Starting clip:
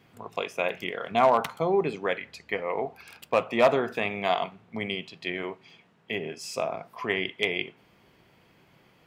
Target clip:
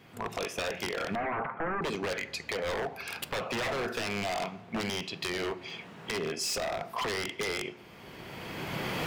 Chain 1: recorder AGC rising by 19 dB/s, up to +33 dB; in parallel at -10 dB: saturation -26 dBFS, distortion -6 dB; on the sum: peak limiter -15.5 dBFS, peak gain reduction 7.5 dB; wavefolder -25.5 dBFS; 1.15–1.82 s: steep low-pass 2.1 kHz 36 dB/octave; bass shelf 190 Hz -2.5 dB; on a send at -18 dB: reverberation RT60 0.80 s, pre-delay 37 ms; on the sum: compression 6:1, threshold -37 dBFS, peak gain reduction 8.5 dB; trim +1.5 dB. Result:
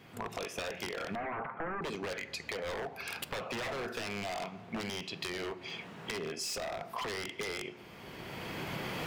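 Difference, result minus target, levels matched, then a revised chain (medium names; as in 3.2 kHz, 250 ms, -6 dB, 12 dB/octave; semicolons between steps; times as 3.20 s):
compression: peak gain reduction +5.5 dB
recorder AGC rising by 19 dB/s, up to +33 dB; in parallel at -10 dB: saturation -26 dBFS, distortion -6 dB; on the sum: peak limiter -15.5 dBFS, peak gain reduction 7.5 dB; wavefolder -25.5 dBFS; 1.15–1.82 s: steep low-pass 2.1 kHz 36 dB/octave; bass shelf 190 Hz -2.5 dB; on a send at -18 dB: reverberation RT60 0.80 s, pre-delay 37 ms; on the sum: compression 6:1, threshold -30.5 dBFS, peak gain reduction 3 dB; trim +1.5 dB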